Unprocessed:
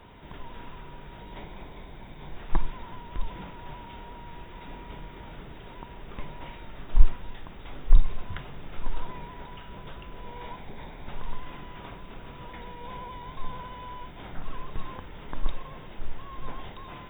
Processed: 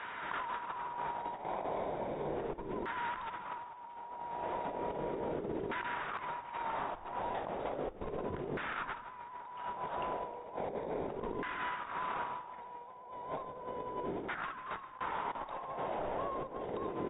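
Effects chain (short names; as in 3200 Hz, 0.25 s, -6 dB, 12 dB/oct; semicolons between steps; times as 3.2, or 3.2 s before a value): LFO band-pass saw down 0.35 Hz 370–1600 Hz; negative-ratio compressor -54 dBFS, ratio -0.5; on a send: frequency-shifting echo 0.157 s, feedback 56%, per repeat -56 Hz, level -17 dB; on the sum: gain +14.5 dB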